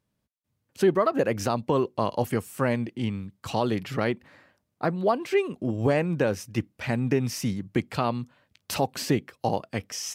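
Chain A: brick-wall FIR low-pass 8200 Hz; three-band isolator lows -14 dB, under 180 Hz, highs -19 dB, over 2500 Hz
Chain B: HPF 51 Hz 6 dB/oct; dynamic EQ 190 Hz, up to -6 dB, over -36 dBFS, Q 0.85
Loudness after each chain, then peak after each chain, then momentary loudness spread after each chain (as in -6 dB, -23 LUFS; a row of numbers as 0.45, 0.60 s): -28.5, -29.5 LUFS; -11.0, -11.5 dBFS; 10, 9 LU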